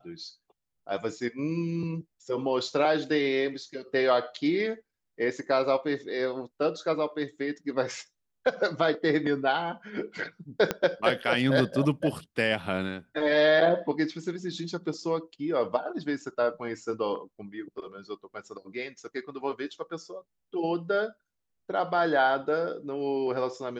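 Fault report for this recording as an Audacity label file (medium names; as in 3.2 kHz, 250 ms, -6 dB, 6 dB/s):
10.710000	10.710000	pop -11 dBFS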